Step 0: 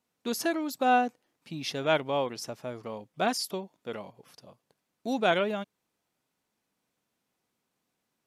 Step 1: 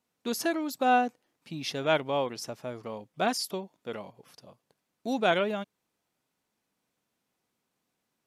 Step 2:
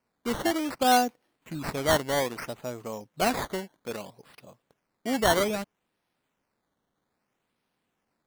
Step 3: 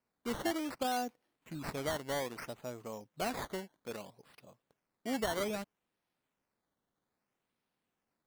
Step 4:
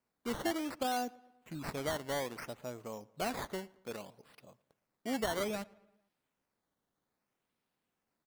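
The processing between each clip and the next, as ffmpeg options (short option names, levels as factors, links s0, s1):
-af anull
-af "acrusher=samples=12:mix=1:aa=0.000001:lfo=1:lforange=12:lforate=0.62,volume=1.26"
-af "alimiter=limit=0.126:level=0:latency=1:release=184,volume=0.422"
-filter_complex "[0:a]asplit=2[s0][s1];[s1]adelay=113,lowpass=f=3500:p=1,volume=0.0668,asplit=2[s2][s3];[s3]adelay=113,lowpass=f=3500:p=1,volume=0.54,asplit=2[s4][s5];[s5]adelay=113,lowpass=f=3500:p=1,volume=0.54,asplit=2[s6][s7];[s7]adelay=113,lowpass=f=3500:p=1,volume=0.54[s8];[s0][s2][s4][s6][s8]amix=inputs=5:normalize=0"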